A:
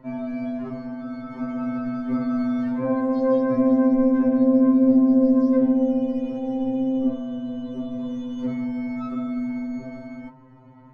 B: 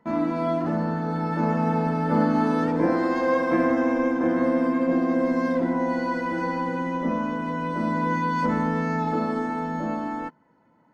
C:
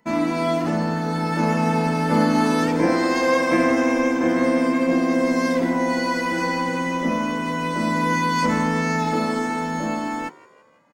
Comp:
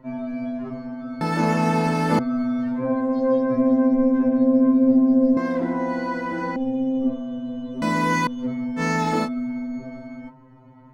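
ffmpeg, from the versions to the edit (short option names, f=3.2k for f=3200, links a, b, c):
-filter_complex "[2:a]asplit=3[a][b][c];[0:a]asplit=5[d][e][f][g][h];[d]atrim=end=1.212[i];[a]atrim=start=1.208:end=2.192[j];[e]atrim=start=2.188:end=5.372[k];[1:a]atrim=start=5.368:end=6.562[l];[f]atrim=start=6.558:end=7.822[m];[b]atrim=start=7.818:end=8.272[n];[g]atrim=start=8.268:end=8.82[o];[c]atrim=start=8.76:end=9.29[p];[h]atrim=start=9.23[q];[i][j]acrossfade=d=0.004:c1=hsin:c2=hsin[r];[r][k]acrossfade=d=0.004:c1=hsin:c2=hsin[s];[s][l]acrossfade=d=0.004:c1=hsin:c2=hsin[t];[t][m]acrossfade=d=0.004:c1=hsin:c2=hsin[u];[u][n]acrossfade=d=0.004:c1=hsin:c2=hsin[v];[v][o]acrossfade=d=0.004:c1=hsin:c2=hsin[w];[w][p]acrossfade=d=0.06:c1=tri:c2=tri[x];[x][q]acrossfade=d=0.06:c1=tri:c2=tri"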